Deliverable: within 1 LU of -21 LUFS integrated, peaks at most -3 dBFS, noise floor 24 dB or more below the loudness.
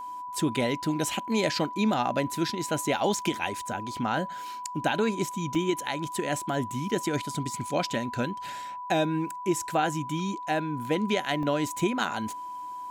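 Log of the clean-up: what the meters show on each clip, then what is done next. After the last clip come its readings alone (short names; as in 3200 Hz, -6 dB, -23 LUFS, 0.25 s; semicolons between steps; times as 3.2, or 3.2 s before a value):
dropouts 2; longest dropout 1.1 ms; steady tone 990 Hz; tone level -35 dBFS; loudness -29.0 LUFS; peak -13.5 dBFS; loudness target -21.0 LUFS
-> interpolate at 5.55/11.43, 1.1 ms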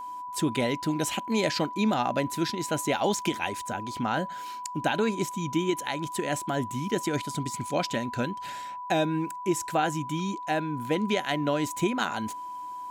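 dropouts 0; steady tone 990 Hz; tone level -35 dBFS
-> notch 990 Hz, Q 30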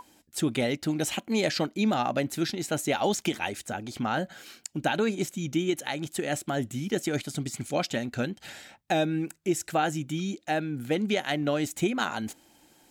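steady tone none; loudness -29.5 LUFS; peak -14.0 dBFS; loudness target -21.0 LUFS
-> gain +8.5 dB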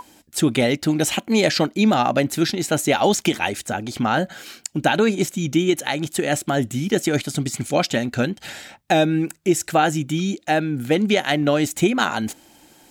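loudness -21.0 LUFS; peak -5.5 dBFS; noise floor -55 dBFS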